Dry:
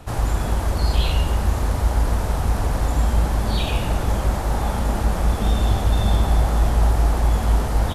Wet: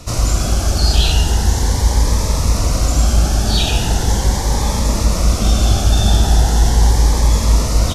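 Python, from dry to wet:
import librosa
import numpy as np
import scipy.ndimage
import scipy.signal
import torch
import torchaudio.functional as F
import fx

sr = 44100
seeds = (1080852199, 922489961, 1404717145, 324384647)

y = fx.peak_eq(x, sr, hz=5800.0, db=13.5, octaves=1.1)
y = fx.notch_cascade(y, sr, direction='rising', hz=0.39)
y = F.gain(torch.from_numpy(y), 5.5).numpy()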